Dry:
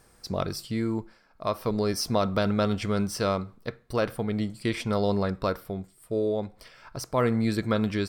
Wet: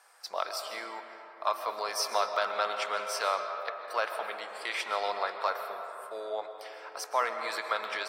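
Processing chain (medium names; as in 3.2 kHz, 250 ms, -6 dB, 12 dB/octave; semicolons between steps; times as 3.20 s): high-pass 750 Hz 24 dB/octave; treble shelf 3 kHz -8 dB; in parallel at -2.5 dB: peak limiter -25 dBFS, peak gain reduction 8.5 dB; on the sum: reverberation RT60 3.5 s, pre-delay 90 ms, DRR 6.5 dB; AAC 48 kbps 44.1 kHz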